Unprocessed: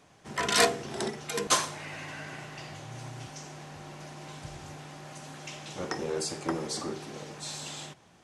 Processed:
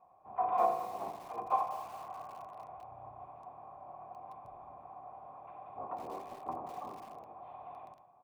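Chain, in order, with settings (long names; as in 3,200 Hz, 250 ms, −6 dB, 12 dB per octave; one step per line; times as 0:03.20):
pitch-shifted copies added −12 semitones −7 dB, −5 semitones −1 dB, +5 semitones −17 dB
in parallel at −11 dB: wrap-around overflow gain 21 dB
on the sum: formant resonators in series a
on a send: repeating echo 84 ms, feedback 47%, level −10.5 dB
on the sum: feedback echo at a low word length 201 ms, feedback 35%, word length 8 bits, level −12 dB
level +3 dB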